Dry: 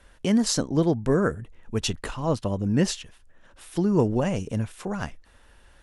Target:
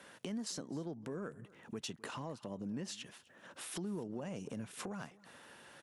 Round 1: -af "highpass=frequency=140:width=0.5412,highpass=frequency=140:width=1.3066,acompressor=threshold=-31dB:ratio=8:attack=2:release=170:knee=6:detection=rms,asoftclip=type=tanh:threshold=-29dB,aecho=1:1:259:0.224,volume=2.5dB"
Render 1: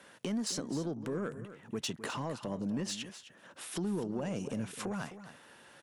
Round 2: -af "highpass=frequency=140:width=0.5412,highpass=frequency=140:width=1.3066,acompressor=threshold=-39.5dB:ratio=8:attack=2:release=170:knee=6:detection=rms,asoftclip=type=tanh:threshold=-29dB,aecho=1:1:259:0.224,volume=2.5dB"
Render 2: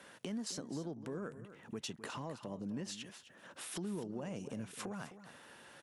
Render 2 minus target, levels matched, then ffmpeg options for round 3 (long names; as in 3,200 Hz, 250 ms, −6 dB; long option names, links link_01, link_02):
echo-to-direct +8.5 dB
-af "highpass=frequency=140:width=0.5412,highpass=frequency=140:width=1.3066,acompressor=threshold=-39.5dB:ratio=8:attack=2:release=170:knee=6:detection=rms,asoftclip=type=tanh:threshold=-29dB,aecho=1:1:259:0.0841,volume=2.5dB"